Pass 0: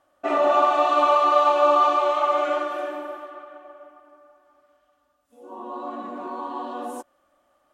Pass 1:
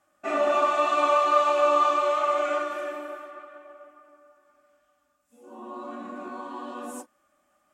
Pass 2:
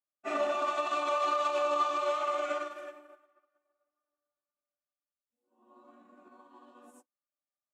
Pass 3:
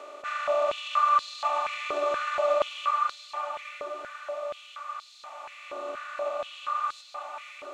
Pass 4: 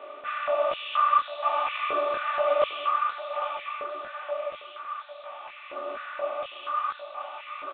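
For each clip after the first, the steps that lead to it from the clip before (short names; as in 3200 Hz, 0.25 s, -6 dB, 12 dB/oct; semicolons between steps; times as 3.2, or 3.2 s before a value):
reverb, pre-delay 3 ms, DRR 3.5 dB
dynamic EQ 4600 Hz, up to +5 dB, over -44 dBFS, Q 0.9; limiter -19 dBFS, peak gain reduction 10 dB; upward expander 2.5:1, over -47 dBFS
per-bin compression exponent 0.2; diffused feedback echo 0.562 s, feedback 46%, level -5.5 dB; stepped high-pass 4.2 Hz 430–4200 Hz; gain -8 dB
on a send: thinning echo 0.802 s, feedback 27%, high-pass 570 Hz, level -9 dB; on the sum: downsampling 8000 Hz; detuned doubles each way 40 cents; gain +4.5 dB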